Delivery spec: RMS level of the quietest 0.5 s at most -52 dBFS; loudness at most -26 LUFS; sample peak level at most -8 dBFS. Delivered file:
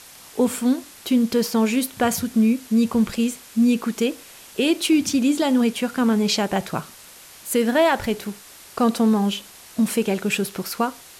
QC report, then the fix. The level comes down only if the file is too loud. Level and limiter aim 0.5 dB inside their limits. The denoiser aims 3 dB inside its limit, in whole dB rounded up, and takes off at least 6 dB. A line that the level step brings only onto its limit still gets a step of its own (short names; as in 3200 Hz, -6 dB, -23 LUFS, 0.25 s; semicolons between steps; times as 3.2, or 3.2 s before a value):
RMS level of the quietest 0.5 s -45 dBFS: fail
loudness -21.5 LUFS: fail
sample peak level -9.0 dBFS: OK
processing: denoiser 6 dB, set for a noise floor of -45 dBFS; gain -5 dB